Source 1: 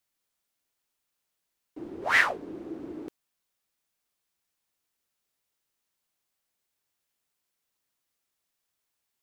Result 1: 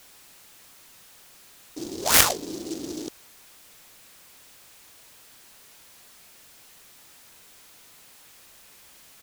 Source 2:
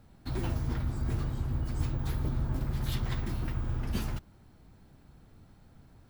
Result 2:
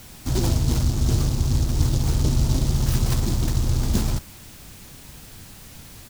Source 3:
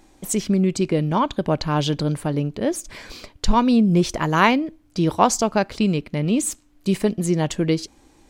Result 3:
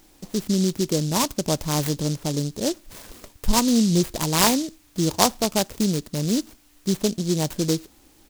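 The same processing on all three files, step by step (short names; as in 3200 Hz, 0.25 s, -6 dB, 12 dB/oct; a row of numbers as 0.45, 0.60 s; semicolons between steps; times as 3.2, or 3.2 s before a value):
whine 2500 Hz -54 dBFS; downsampling 8000 Hz; noise-modulated delay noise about 5200 Hz, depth 0.15 ms; match loudness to -23 LUFS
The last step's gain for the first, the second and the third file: +5.0, +11.0, -2.5 dB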